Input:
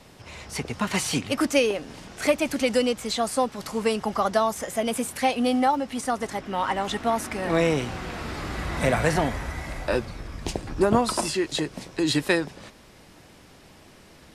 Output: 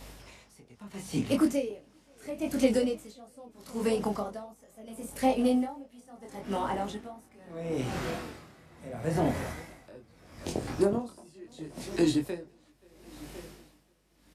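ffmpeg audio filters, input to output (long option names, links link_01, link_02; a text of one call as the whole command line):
ffmpeg -i in.wav -filter_complex "[0:a]highpass=100,highshelf=frequency=9200:gain=11.5,acrossover=split=630[link_01][link_02];[link_02]acompressor=threshold=-37dB:ratio=6[link_03];[link_01][link_03]amix=inputs=2:normalize=0,flanger=delay=7:depth=6.9:regen=-72:speed=1.5:shape=triangular,aeval=exprs='val(0)+0.002*(sin(2*PI*50*n/s)+sin(2*PI*2*50*n/s)/2+sin(2*PI*3*50*n/s)/3+sin(2*PI*4*50*n/s)/4+sin(2*PI*5*50*n/s)/5)':channel_layout=same,flanger=delay=22.5:depth=3.1:speed=0.4,asplit=2[link_04][link_05];[link_05]aecho=0:1:527|1054|1581|2108|2635|3162:0.141|0.0833|0.0492|0.029|0.0171|0.0101[link_06];[link_04][link_06]amix=inputs=2:normalize=0,aeval=exprs='val(0)*pow(10,-24*(0.5-0.5*cos(2*PI*0.75*n/s))/20)':channel_layout=same,volume=8.5dB" out.wav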